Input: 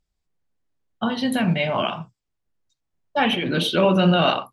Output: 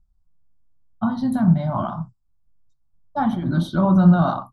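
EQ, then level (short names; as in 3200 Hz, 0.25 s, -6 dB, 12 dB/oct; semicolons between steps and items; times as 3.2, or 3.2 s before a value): tilt -3 dB/oct; band shelf 2200 Hz -8.5 dB 1 oct; fixed phaser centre 1100 Hz, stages 4; 0.0 dB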